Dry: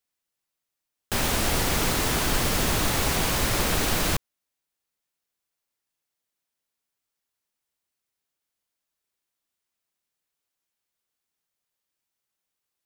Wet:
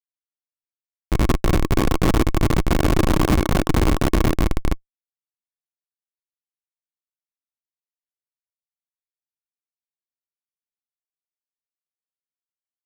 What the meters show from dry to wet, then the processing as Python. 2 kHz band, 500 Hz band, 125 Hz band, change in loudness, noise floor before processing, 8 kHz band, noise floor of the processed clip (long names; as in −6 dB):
−1.0 dB, +6.5 dB, +9.5 dB, +3.0 dB, −85 dBFS, −7.5 dB, below −85 dBFS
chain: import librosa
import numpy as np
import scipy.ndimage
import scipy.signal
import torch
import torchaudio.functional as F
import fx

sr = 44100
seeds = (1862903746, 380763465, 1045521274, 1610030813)

p1 = x + 0.5 * 10.0 ** (-37.0 / 20.0) * np.sign(x)
p2 = fx.peak_eq(p1, sr, hz=310.0, db=-2.0, octaves=1.5)
p3 = p2 + fx.echo_feedback(p2, sr, ms=255, feedback_pct=57, wet_db=-4.5, dry=0)
p4 = fx.rev_freeverb(p3, sr, rt60_s=0.77, hf_ratio=0.45, predelay_ms=20, drr_db=-2.0)
p5 = fx.rider(p4, sr, range_db=4, speed_s=0.5)
p6 = p4 + (p5 * librosa.db_to_amplitude(-1.0))
p7 = fx.low_shelf(p6, sr, hz=150.0, db=2.5)
p8 = fx.sample_hold(p7, sr, seeds[0], rate_hz=2200.0, jitter_pct=20)
p9 = fx.schmitt(p8, sr, flips_db=-13.0)
y = fx.small_body(p9, sr, hz=(320.0, 1100.0, 2200.0), ring_ms=35, db=7)